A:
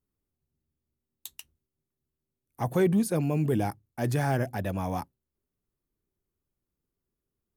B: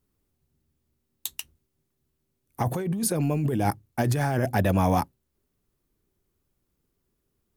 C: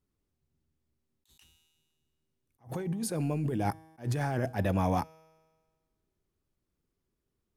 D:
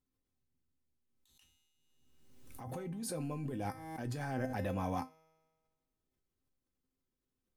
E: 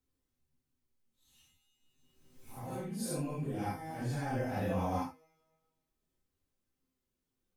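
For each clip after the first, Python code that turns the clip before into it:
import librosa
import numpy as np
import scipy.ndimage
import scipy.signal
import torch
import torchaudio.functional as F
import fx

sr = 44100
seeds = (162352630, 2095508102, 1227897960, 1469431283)

y1 = fx.over_compress(x, sr, threshold_db=-30.0, ratio=-1.0)
y1 = y1 * librosa.db_to_amplitude(6.0)
y2 = fx.high_shelf(y1, sr, hz=11000.0, db=-11.5)
y2 = fx.comb_fb(y2, sr, f0_hz=160.0, decay_s=1.5, harmonics='all', damping=0.0, mix_pct=50)
y2 = fx.attack_slew(y2, sr, db_per_s=260.0)
y3 = fx.comb_fb(y2, sr, f0_hz=260.0, decay_s=0.2, harmonics='all', damping=0.0, mix_pct=80)
y3 = fx.pre_swell(y3, sr, db_per_s=38.0)
y3 = y3 * librosa.db_to_amplitude(2.0)
y4 = fx.phase_scramble(y3, sr, seeds[0], window_ms=200)
y4 = y4 * librosa.db_to_amplitude(2.5)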